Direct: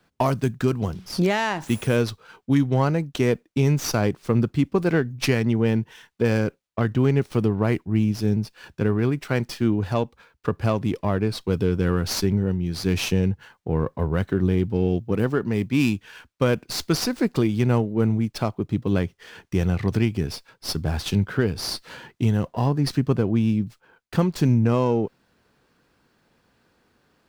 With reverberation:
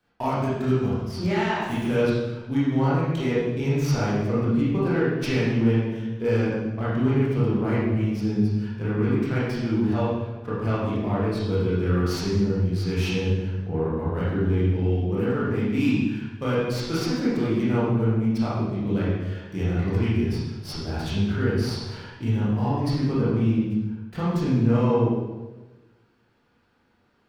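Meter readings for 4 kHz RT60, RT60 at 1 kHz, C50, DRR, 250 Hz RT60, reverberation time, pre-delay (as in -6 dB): 0.95 s, 1.1 s, -2.0 dB, -9.5 dB, 1.4 s, 1.2 s, 21 ms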